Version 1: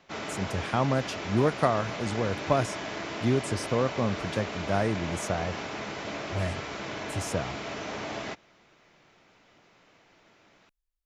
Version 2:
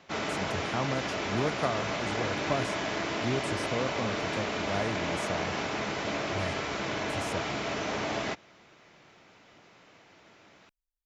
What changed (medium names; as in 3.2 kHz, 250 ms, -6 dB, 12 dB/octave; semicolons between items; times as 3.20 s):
speech -6.5 dB; background +3.5 dB